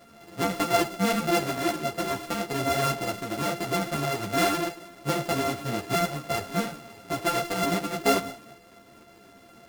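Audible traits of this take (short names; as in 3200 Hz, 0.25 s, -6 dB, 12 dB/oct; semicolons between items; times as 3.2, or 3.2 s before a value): a buzz of ramps at a fixed pitch in blocks of 64 samples; a shimmering, thickened sound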